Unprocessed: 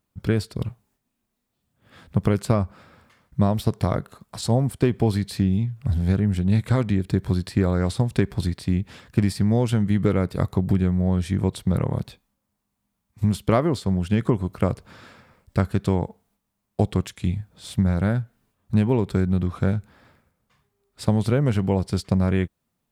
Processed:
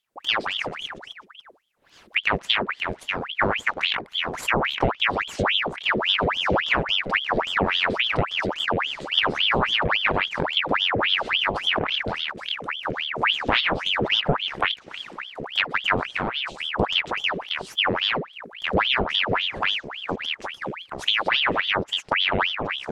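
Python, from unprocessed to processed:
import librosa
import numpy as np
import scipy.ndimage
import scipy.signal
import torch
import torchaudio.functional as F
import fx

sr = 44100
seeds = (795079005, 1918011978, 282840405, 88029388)

y = fx.echo_pitch(x, sr, ms=118, semitones=-3, count=3, db_per_echo=-6.0)
y = fx.env_lowpass_down(y, sr, base_hz=2300.0, full_db=-15.5)
y = fx.ring_lfo(y, sr, carrier_hz=1800.0, swing_pct=85, hz=3.6)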